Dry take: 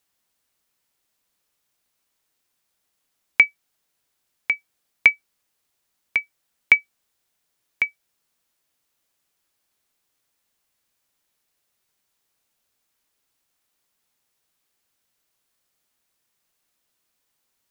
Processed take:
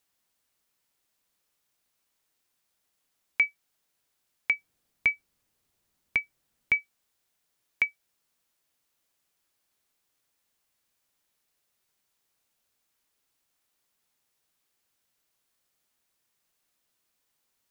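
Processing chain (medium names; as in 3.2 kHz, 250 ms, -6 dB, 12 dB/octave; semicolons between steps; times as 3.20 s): 4.52–6.73 s: bass shelf 360 Hz +11 dB; peak limiter -10.5 dBFS, peak gain reduction 10.5 dB; trim -2.5 dB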